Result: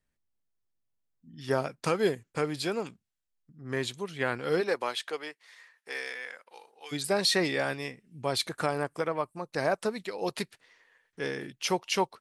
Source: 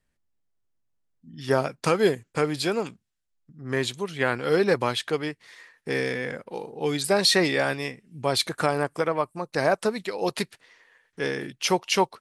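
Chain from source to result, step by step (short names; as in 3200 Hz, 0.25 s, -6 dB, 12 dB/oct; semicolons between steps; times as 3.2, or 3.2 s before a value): 4.6–6.91 HPF 350 Hz -> 1400 Hz 12 dB/oct; gain -5.5 dB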